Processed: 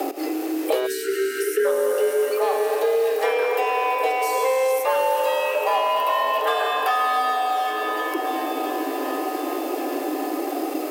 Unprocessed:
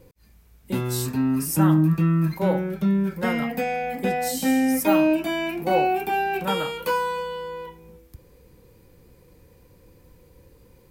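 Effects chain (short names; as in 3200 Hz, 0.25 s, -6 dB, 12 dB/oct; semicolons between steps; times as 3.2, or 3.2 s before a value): G.711 law mismatch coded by mu; on a send: swung echo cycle 1.111 s, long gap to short 1.5:1, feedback 44%, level -21.5 dB; on the sum: reverb RT60 3.6 s, pre-delay 85 ms, DRR 3.5 dB; in parallel at -7 dB: hard clip -22 dBFS, distortion -7 dB; on the sum: frequency shift +260 Hz; spectral delete 0.87–1.66, 460–1300 Hz; three-band squash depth 100%; gain -3.5 dB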